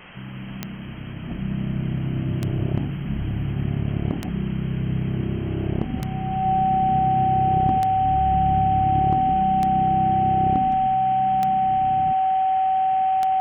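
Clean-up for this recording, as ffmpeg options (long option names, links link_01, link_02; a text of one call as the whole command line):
ffmpeg -i in.wav -af "adeclick=threshold=4,bandreject=frequency=760:width=30,afwtdn=0.014" out.wav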